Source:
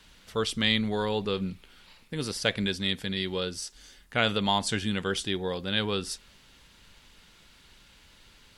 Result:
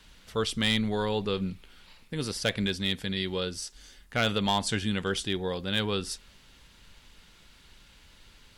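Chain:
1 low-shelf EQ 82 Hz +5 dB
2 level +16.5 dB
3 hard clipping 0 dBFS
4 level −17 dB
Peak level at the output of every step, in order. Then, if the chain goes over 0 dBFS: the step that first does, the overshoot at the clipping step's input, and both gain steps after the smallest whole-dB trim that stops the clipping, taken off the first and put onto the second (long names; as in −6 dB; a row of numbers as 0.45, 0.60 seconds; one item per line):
−8.5, +8.0, 0.0, −17.0 dBFS
step 2, 8.0 dB
step 2 +8.5 dB, step 4 −9 dB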